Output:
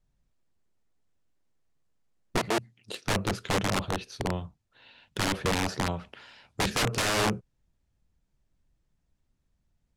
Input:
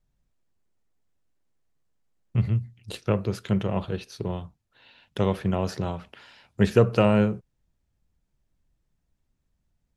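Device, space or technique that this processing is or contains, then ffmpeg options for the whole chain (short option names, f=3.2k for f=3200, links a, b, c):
overflowing digital effects unit: -filter_complex "[0:a]aeval=exprs='(mod(10*val(0)+1,2)-1)/10':c=same,lowpass=10k,asettb=1/sr,asplit=3[a][b][c];[a]atrim=end=2.384[d];[b]atrim=start=2.38:end=3.05,asetpts=PTS-STARTPTS,afade=t=in:d=0.004:c=qsin,afade=t=out:st=0.666:d=0.004:c=qsin,highpass=250[e];[c]atrim=start=3.046[f];[d][e]acrossfade=d=0.004:c1=hsin:c2=qsin[g];[g][f]acrossfade=d=0.004:c1=qsin:c2=hsin"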